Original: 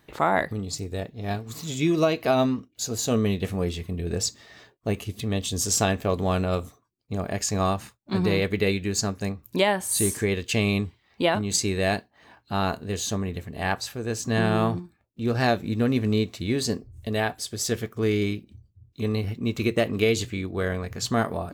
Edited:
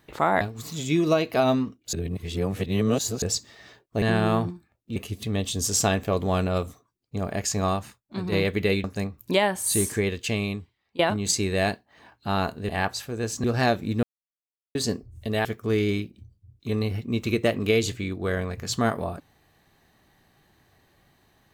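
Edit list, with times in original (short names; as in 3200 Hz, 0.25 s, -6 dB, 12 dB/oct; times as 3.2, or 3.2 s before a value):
0.41–1.32 cut
2.84–4.13 reverse
7.51–8.29 fade out, to -8 dB
8.81–9.09 cut
10.24–11.24 fade out, to -20 dB
12.94–13.56 cut
14.31–15.25 move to 4.93
15.84–16.56 mute
17.26–17.78 cut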